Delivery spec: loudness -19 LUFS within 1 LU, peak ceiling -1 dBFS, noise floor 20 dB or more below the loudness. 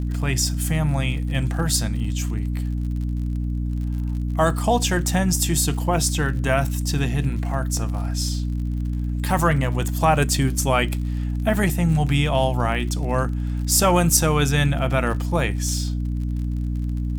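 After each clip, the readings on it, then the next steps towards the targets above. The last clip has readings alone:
ticks 43/s; hum 60 Hz; harmonics up to 300 Hz; hum level -22 dBFS; loudness -22.0 LUFS; peak -3.5 dBFS; loudness target -19.0 LUFS
-> de-click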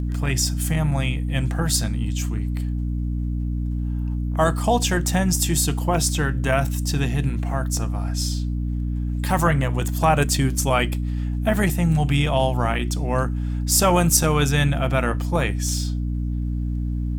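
ticks 1.5/s; hum 60 Hz; harmonics up to 300 Hz; hum level -22 dBFS
-> de-hum 60 Hz, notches 5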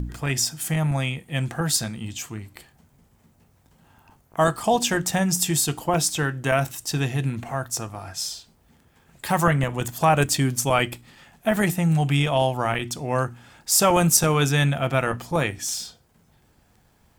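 hum none; loudness -23.0 LUFS; peak -4.0 dBFS; loudness target -19.0 LUFS
-> gain +4 dB; limiter -1 dBFS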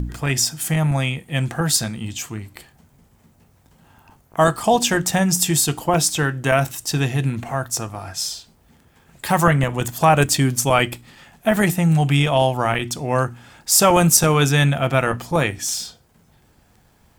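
loudness -19.0 LUFS; peak -1.0 dBFS; noise floor -57 dBFS

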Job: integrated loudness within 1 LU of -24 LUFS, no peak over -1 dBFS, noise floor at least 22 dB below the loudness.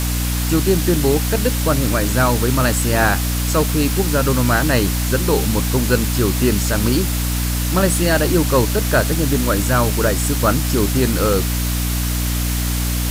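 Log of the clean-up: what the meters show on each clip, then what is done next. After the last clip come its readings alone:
hum 60 Hz; harmonics up to 300 Hz; hum level -18 dBFS; noise floor -20 dBFS; noise floor target -40 dBFS; loudness -17.5 LUFS; peak -2.0 dBFS; loudness target -24.0 LUFS
-> de-hum 60 Hz, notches 5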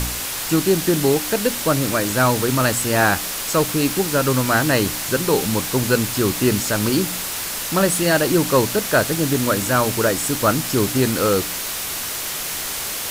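hum none; noise floor -27 dBFS; noise floor target -41 dBFS
-> noise print and reduce 14 dB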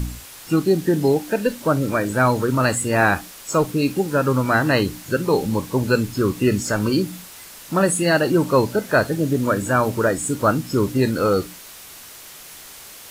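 noise floor -41 dBFS; noise floor target -42 dBFS
-> noise print and reduce 6 dB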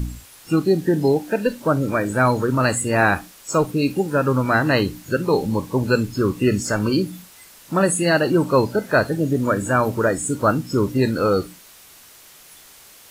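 noise floor -47 dBFS; loudness -20.0 LUFS; peak -3.5 dBFS; loudness target -24.0 LUFS
-> gain -4 dB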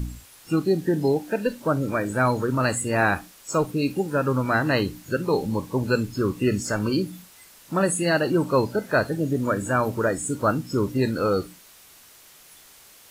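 loudness -24.0 LUFS; peak -7.5 dBFS; noise floor -51 dBFS

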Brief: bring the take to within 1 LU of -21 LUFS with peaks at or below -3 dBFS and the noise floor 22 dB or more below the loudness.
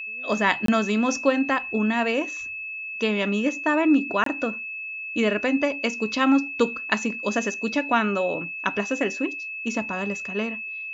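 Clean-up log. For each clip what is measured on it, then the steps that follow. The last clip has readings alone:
dropouts 2; longest dropout 23 ms; steady tone 2600 Hz; tone level -31 dBFS; loudness -24.5 LUFS; peak -4.5 dBFS; loudness target -21.0 LUFS
-> interpolate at 0.66/4.24, 23 ms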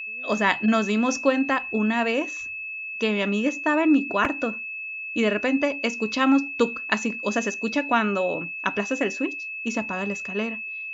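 dropouts 0; steady tone 2600 Hz; tone level -31 dBFS
-> notch 2600 Hz, Q 30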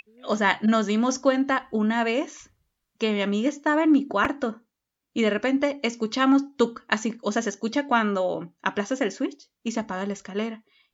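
steady tone none; loudness -25.0 LUFS; peak -5.0 dBFS; loudness target -21.0 LUFS
-> gain +4 dB; limiter -3 dBFS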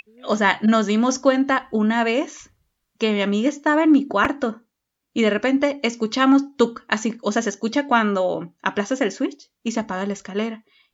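loudness -21.0 LUFS; peak -3.0 dBFS; noise floor -78 dBFS

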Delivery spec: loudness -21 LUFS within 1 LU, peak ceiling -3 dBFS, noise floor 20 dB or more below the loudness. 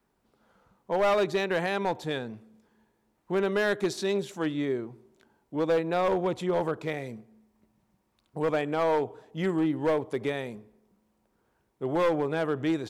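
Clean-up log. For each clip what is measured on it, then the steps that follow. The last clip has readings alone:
clipped 1.6%; flat tops at -20.0 dBFS; loudness -28.5 LUFS; peak -20.0 dBFS; loudness target -21.0 LUFS
-> clip repair -20 dBFS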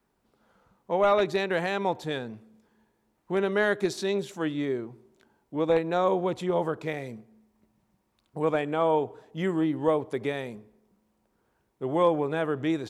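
clipped 0.0%; loudness -27.5 LUFS; peak -11.0 dBFS; loudness target -21.0 LUFS
-> gain +6.5 dB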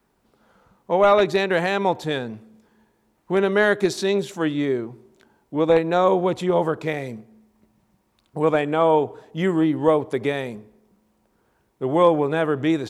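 loudness -21.0 LUFS; peak -4.5 dBFS; noise floor -67 dBFS

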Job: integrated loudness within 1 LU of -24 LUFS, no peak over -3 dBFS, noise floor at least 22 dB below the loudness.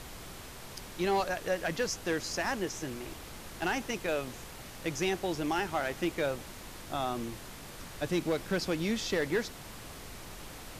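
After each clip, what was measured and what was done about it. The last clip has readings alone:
clipped 0.4%; flat tops at -22.5 dBFS; noise floor -46 dBFS; noise floor target -56 dBFS; loudness -33.5 LUFS; peak -22.5 dBFS; loudness target -24.0 LUFS
-> clip repair -22.5 dBFS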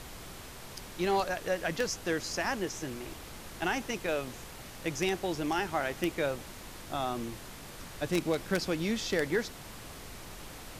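clipped 0.0%; noise floor -46 dBFS; noise floor target -55 dBFS
-> noise print and reduce 9 dB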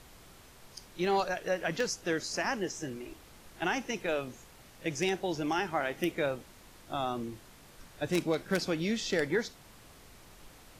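noise floor -55 dBFS; loudness -33.0 LUFS; peak -13.5 dBFS; loudness target -24.0 LUFS
-> gain +9 dB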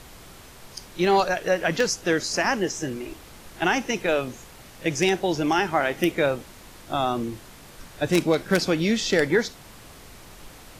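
loudness -24.0 LUFS; peak -4.5 dBFS; noise floor -46 dBFS

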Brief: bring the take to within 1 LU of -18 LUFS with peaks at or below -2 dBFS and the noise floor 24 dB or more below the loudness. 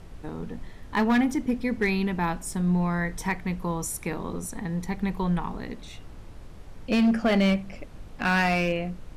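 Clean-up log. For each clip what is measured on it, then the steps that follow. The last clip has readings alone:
clipped 1.1%; flat tops at -17.0 dBFS; noise floor -44 dBFS; noise floor target -51 dBFS; loudness -26.5 LUFS; peak -17.0 dBFS; loudness target -18.0 LUFS
-> clip repair -17 dBFS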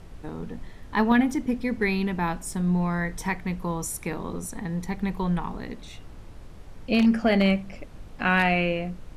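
clipped 0.0%; noise floor -44 dBFS; noise floor target -50 dBFS
-> noise print and reduce 6 dB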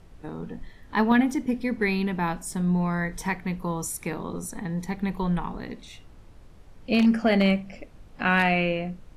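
noise floor -49 dBFS; noise floor target -50 dBFS
-> noise print and reduce 6 dB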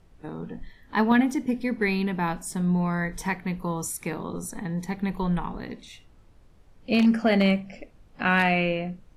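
noise floor -55 dBFS; loudness -25.5 LUFS; peak -8.0 dBFS; loudness target -18.0 LUFS
-> gain +7.5 dB; limiter -2 dBFS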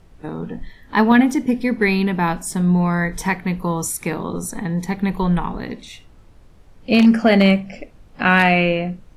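loudness -18.0 LUFS; peak -2.0 dBFS; noise floor -48 dBFS

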